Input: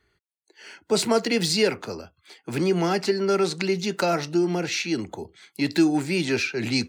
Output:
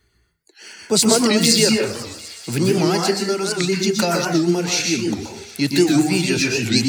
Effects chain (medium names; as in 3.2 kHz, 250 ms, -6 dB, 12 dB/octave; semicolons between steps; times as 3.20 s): reverb removal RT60 1.1 s; 3.11–3.63 s: compression 2.5:1, threshold -24 dBFS, peak gain reduction 4 dB; tone controls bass +7 dB, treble +11 dB; feedback echo behind a high-pass 250 ms, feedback 84%, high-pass 1.6 kHz, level -19.5 dB; plate-style reverb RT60 0.56 s, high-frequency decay 0.55×, pre-delay 110 ms, DRR -0.5 dB; warped record 78 rpm, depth 160 cents; trim +1.5 dB